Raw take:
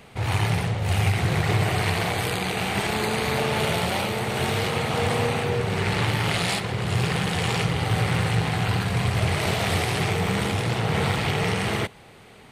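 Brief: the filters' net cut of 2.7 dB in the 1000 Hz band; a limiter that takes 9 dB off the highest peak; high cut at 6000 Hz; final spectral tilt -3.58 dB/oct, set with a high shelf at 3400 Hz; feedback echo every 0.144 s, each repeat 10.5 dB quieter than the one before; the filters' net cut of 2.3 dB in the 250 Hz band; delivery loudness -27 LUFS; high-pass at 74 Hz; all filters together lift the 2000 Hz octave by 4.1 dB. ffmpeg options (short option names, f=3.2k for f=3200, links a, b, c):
-af "highpass=74,lowpass=6k,equalizer=f=250:t=o:g=-3.5,equalizer=f=1k:t=o:g=-5,equalizer=f=2k:t=o:g=7.5,highshelf=f=3.4k:g=-4.5,alimiter=limit=-17.5dB:level=0:latency=1,aecho=1:1:144|288|432:0.299|0.0896|0.0269,volume=-1dB"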